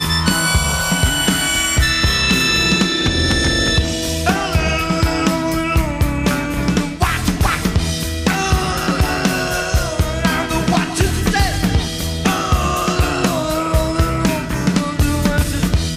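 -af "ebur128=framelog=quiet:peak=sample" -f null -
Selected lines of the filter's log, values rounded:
Integrated loudness:
  I:         -16.6 LUFS
  Threshold: -26.6 LUFS
Loudness range:
  LRA:         3.3 LU
  Threshold: -36.7 LUFS
  LRA low:   -17.7 LUFS
  LRA high:  -14.4 LUFS
Sample peak:
  Peak:       -2.3 dBFS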